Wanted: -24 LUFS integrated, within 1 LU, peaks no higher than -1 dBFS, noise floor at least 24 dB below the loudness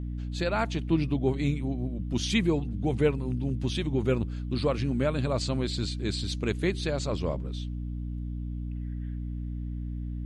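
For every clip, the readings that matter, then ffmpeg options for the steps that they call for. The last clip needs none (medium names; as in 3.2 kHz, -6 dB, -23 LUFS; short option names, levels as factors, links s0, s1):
hum 60 Hz; highest harmonic 300 Hz; hum level -31 dBFS; loudness -30.0 LUFS; peak level -11.0 dBFS; loudness target -24.0 LUFS
-> -af "bandreject=f=60:t=h:w=6,bandreject=f=120:t=h:w=6,bandreject=f=180:t=h:w=6,bandreject=f=240:t=h:w=6,bandreject=f=300:t=h:w=6"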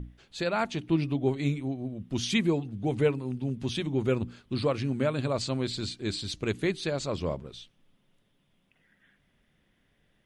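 hum not found; loudness -30.0 LUFS; peak level -11.5 dBFS; loudness target -24.0 LUFS
-> -af "volume=2"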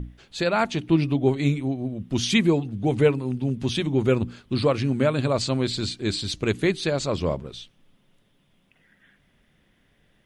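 loudness -24.0 LUFS; peak level -5.5 dBFS; noise floor -65 dBFS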